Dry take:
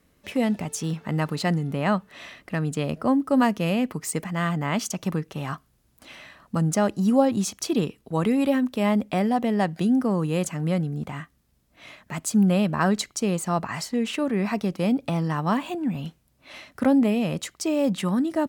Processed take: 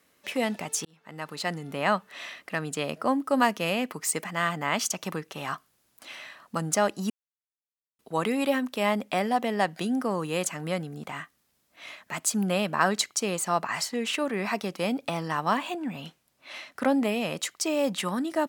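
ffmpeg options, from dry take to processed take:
ffmpeg -i in.wav -filter_complex "[0:a]asettb=1/sr,asplit=3[link_01][link_02][link_03];[link_01]atrim=end=15.534[link_04];[link_02]atrim=start=15.53:end=16.98,asetpts=PTS-STARTPTS,afade=type=in:duration=0.004:curve=qsin,afade=type=out:start_time=1.446:duration=0.004:curve=qsin,highshelf=frequency=8200:gain=-4.5[link_05];[link_03]atrim=start=16.976[link_06];[link_04][link_05]acrossfade=duration=0.004:curve1=hsin:curve2=qsin[link_07];[link_07][link_06]acrossfade=duration=0.004:curve1=qsin:curve2=hsin,asplit=4[link_08][link_09][link_10][link_11];[link_08]atrim=end=0.85,asetpts=PTS-STARTPTS,afade=type=out:start_time=0.846:duration=0.004:curve=hsin[link_12];[link_09]atrim=start=0.85:end=7.1,asetpts=PTS-STARTPTS,afade=type=in:duration=0.96,afade=type=out:start_time=6.246:duration=0.004:curve=hsin[link_13];[link_10]atrim=start=7.1:end=7.99,asetpts=PTS-STARTPTS,volume=0[link_14];[link_11]atrim=start=7.99,asetpts=PTS-STARTPTS,afade=type=in:duration=0.004:curve=hsin[link_15];[link_12][link_13][link_14][link_15]concat=n=4:v=0:a=1,highpass=frequency=740:poles=1,volume=3dB" out.wav

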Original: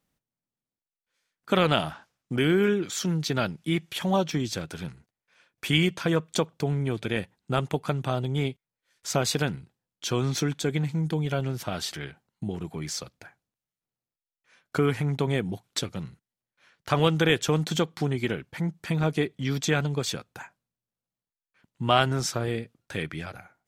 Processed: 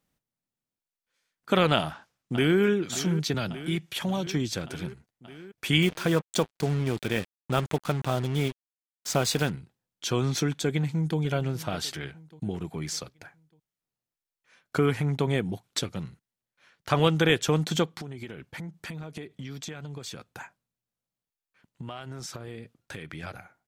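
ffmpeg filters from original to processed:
ffmpeg -i in.wav -filter_complex "[0:a]asplit=2[link_01][link_02];[link_02]afade=type=in:start_time=1.76:duration=0.01,afade=type=out:start_time=2.61:duration=0.01,aecho=0:1:580|1160|1740|2320|2900|3480|4060|4640|5220|5800|6380:0.223872|0.167904|0.125928|0.094446|0.0708345|0.0531259|0.0398444|0.0298833|0.0224125|0.0168094|0.012607[link_03];[link_01][link_03]amix=inputs=2:normalize=0,asettb=1/sr,asplit=3[link_04][link_05][link_06];[link_04]atrim=end=3.344[link_07];[link_05]atrim=start=3.34:end=4.27,asetpts=PTS-STARTPTS,afade=type=in:duration=0.004:curve=qsin,afade=type=out:start_time=0.926:duration=0.004:curve=qsin,acrossover=split=180|3000[link_08][link_09][link_10];[link_09]acompressor=threshold=-28dB:ratio=6:attack=3.2:release=140:knee=2.83:detection=peak[link_11];[link_08][link_11][link_10]amix=inputs=3:normalize=0[link_12];[link_06]atrim=start=4.266[link_13];[link_07][link_12]acrossfade=duration=0.004:curve1=hsin:curve2=qsin[link_14];[link_14][link_13]acrossfade=duration=0.004:curve1=qsin:curve2=hsin,asettb=1/sr,asplit=3[link_15][link_16][link_17];[link_15]atrim=end=5.824[link_18];[link_16]atrim=start=5.82:end=9.5,asetpts=PTS-STARTPTS,afade=type=in:duration=0.004:curve=qsin,afade=type=out:start_time=3.676:duration=0.004:curve=qsin,acrusher=bits=5:mix=0:aa=0.5[link_19];[link_17]atrim=start=9.496[link_20];[link_18][link_19]acrossfade=duration=0.004:curve1=hsin:curve2=qsin[link_21];[link_21][link_20]acrossfade=duration=0.004:curve1=qsin:curve2=hsin,asplit=2[link_22][link_23];[link_23]afade=type=in:start_time=10.62:duration=0.01,afade=type=out:start_time=11.19:duration=0.01,aecho=0:1:600|1200|1800|2400:0.149624|0.0673306|0.0302988|0.0136344[link_24];[link_22][link_24]amix=inputs=2:normalize=0,asettb=1/sr,asplit=3[link_25][link_26][link_27];[link_25]atrim=end=17.974[link_28];[link_26]atrim=start=17.97:end=23.23,asetpts=PTS-STARTPTS,afade=type=in:duration=0.004:curve=qsin,afade=type=out:start_time=5.256:duration=0.004:curve=qsin,acompressor=threshold=-34dB:ratio=12:attack=3.2:release=140:knee=1:detection=peak[link_29];[link_27]atrim=start=23.226[link_30];[link_28][link_29]acrossfade=duration=0.004:curve1=hsin:curve2=qsin[link_31];[link_31][link_30]acrossfade=duration=0.004:curve1=qsin:curve2=hsin" out.wav

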